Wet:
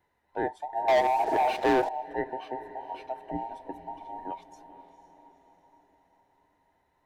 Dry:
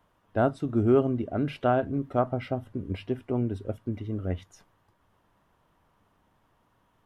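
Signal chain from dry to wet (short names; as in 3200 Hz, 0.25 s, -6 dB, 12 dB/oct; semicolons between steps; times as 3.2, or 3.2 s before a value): band inversion scrambler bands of 1000 Hz; 3.31–4.31 resonant low shelf 380 Hz +10.5 dB, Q 3; diffused feedback echo 0.476 s, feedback 53%, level -13 dB; 0.88–1.89 sample leveller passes 3; gain -6.5 dB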